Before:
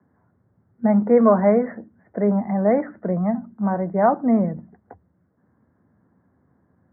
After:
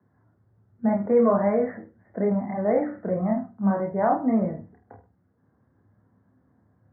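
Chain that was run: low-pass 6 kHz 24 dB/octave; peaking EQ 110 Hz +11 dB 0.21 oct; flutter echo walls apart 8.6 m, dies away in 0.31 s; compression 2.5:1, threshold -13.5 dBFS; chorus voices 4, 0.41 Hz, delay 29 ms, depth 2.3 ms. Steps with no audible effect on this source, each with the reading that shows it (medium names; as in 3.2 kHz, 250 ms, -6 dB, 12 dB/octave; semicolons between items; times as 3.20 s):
low-pass 6 kHz: input has nothing above 1.5 kHz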